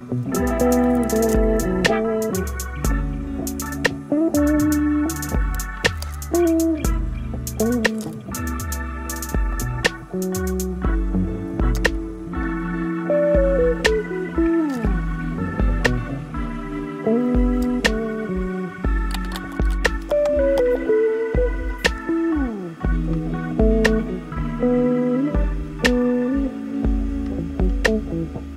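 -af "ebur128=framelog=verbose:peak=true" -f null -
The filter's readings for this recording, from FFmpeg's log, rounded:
Integrated loudness:
  I:         -21.7 LUFS
  Threshold: -31.7 LUFS
Loudness range:
  LRA:         3.4 LU
  Threshold: -41.8 LUFS
  LRA low:   -23.9 LUFS
  LRA high:  -20.5 LUFS
True peak:
  Peak:       -4.5 dBFS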